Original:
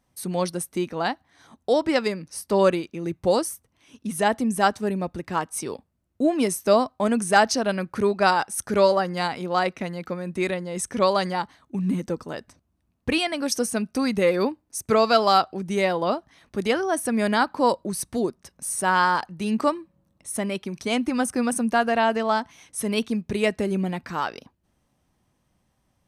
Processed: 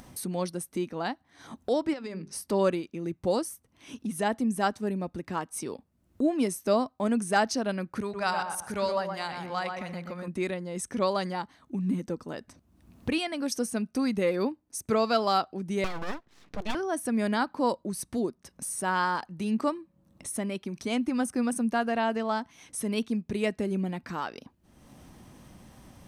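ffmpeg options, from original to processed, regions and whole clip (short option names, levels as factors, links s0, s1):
-filter_complex "[0:a]asettb=1/sr,asplit=3[s0][s1][s2];[s0]atrim=end=1.934[s3];[s1]atrim=start=1.93:end=2.33,asetpts=PTS-STARTPTS,afade=t=in:d=0.004:c=qsin,afade=t=out:st=0.396:d=0.004:c=qsin,lowpass=7700,bandreject=f=50:t=h:w=6,bandreject=f=100:t=h:w=6,bandreject=f=150:t=h:w=6,bandreject=f=200:t=h:w=6,bandreject=f=250:t=h:w=6,bandreject=f=300:t=h:w=6,bandreject=f=350:t=h:w=6,bandreject=f=400:t=h:w=6,acompressor=threshold=0.0398:ratio=12:attack=3.2:release=140:knee=1:detection=peak[s4];[s2]atrim=start=2.326[s5];[s3][s4]acrossfade=d=0.004:c1=hsin:c2=qsin[s6];[s6][s5]acrossfade=d=0.004:c1=qsin:c2=hsin,asettb=1/sr,asplit=3[s7][s8][s9];[s7]atrim=end=8.014[s10];[s8]atrim=start=8.01:end=10.28,asetpts=PTS-STARTPTS,afade=t=in:d=0.004:c=qsin,afade=t=out:st=2.266:d=0.004:c=qsin,equalizer=f=320:w=0.81:g=-10.5,asplit=2[s11][s12];[s12]adelay=121,lowpass=f=2000:p=1,volume=0.631,asplit=2[s13][s14];[s14]adelay=121,lowpass=f=2000:p=1,volume=0.33,asplit=2[s15][s16];[s16]adelay=121,lowpass=f=2000:p=1,volume=0.33,asplit=2[s17][s18];[s18]adelay=121,lowpass=f=2000:p=1,volume=0.33[s19];[s11][s13][s15][s17][s19]amix=inputs=5:normalize=0,atrim=end_sample=100107[s20];[s9]atrim=start=10.276[s21];[s10][s20]acrossfade=d=0.004:c1=hsin:c2=qsin[s22];[s22][s21]acrossfade=d=0.004:c1=qsin:c2=hsin,asettb=1/sr,asplit=3[s23][s24][s25];[s23]atrim=end=15.844[s26];[s24]atrim=start=15.84:end=16.75,asetpts=PTS-STARTPTS,afade=t=in:d=0.004:c=qsin,afade=t=out:st=0.906:d=0.004:c=qsin,lowpass=5000,equalizer=f=810:w=6.2:g=-14,aeval=exprs='abs(val(0))':c=same[s27];[s25]atrim=start=16.746[s28];[s26][s27]acrossfade=d=0.004:c1=hsin:c2=qsin[s29];[s29][s28]acrossfade=d=0.004:c1=qsin:c2=hsin,equalizer=f=250:t=o:w=1.2:g=4.5,acompressor=mode=upward:threshold=0.0708:ratio=2.5,volume=0.422"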